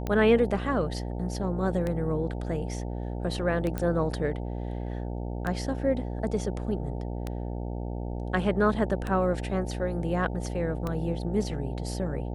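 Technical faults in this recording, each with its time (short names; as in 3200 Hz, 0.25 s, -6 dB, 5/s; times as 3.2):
buzz 60 Hz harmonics 15 -33 dBFS
tick 33 1/3 rpm -18 dBFS
3.78 pop -17 dBFS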